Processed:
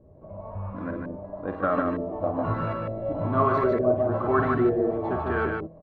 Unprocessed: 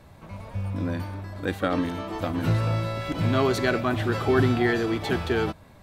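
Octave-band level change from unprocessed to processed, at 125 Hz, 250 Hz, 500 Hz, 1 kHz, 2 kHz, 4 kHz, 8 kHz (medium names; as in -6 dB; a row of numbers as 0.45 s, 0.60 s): -5.5 dB, -2.0 dB, +2.0 dB, +3.5 dB, -4.5 dB, under -15 dB, under -30 dB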